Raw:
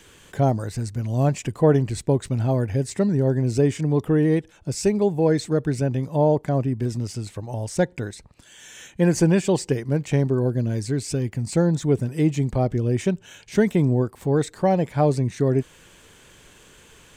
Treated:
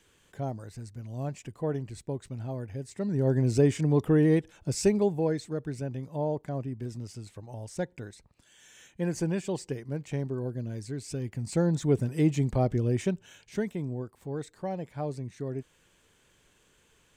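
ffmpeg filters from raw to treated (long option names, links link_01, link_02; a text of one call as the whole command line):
ffmpeg -i in.wav -af "volume=4.5dB,afade=type=in:start_time=2.96:duration=0.41:silence=0.281838,afade=type=out:start_time=4.87:duration=0.54:silence=0.375837,afade=type=in:start_time=10.99:duration=0.99:silence=0.421697,afade=type=out:start_time=12.78:duration=0.97:silence=0.298538" out.wav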